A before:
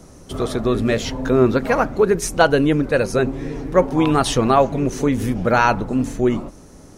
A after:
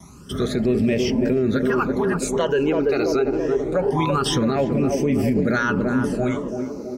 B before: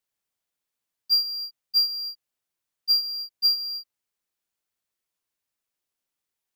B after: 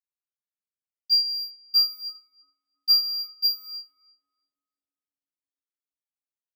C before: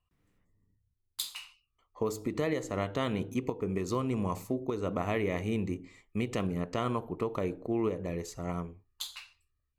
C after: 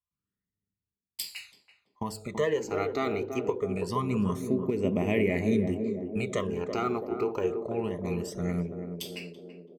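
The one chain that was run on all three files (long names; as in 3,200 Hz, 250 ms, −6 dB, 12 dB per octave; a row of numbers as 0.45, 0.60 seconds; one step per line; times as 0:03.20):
noise gate with hold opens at −40 dBFS
high-pass filter 72 Hz 12 dB per octave
dynamic equaliser 9,500 Hz, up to −7 dB, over −48 dBFS, Q 1.9
comb filter 4.9 ms, depth 31%
all-pass phaser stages 12, 0.25 Hz, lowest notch 170–1,300 Hz
on a send: feedback echo with a band-pass in the loop 332 ms, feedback 70%, band-pass 370 Hz, level −5 dB
on the sum: boost into a limiter +14 dB
normalise the peak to −12 dBFS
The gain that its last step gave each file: −11.0, −11.0, −9.0 decibels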